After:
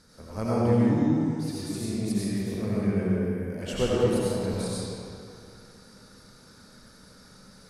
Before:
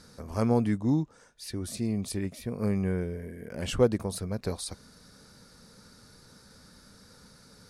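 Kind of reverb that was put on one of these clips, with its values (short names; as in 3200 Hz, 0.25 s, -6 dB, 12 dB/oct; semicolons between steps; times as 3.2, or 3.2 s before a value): digital reverb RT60 2.4 s, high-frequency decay 0.75×, pre-delay 50 ms, DRR -7.5 dB; gain -5 dB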